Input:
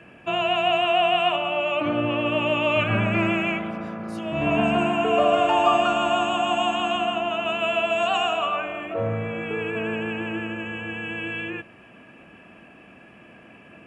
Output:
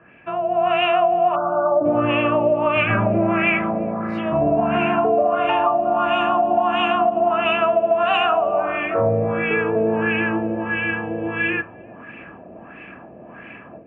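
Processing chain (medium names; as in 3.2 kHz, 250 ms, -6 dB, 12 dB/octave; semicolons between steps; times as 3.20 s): de-hum 103.4 Hz, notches 29; LFO low-pass sine 1.5 Hz 580–2300 Hz; compression, threshold -20 dBFS, peak gain reduction 10 dB; spectral selection erased 1.35–1.85 s, 1.6–5.2 kHz; level rider gain up to 11 dB; on a send: filtered feedback delay 348 ms, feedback 73%, low-pass 820 Hz, level -22.5 dB; on the sum: trim -4 dB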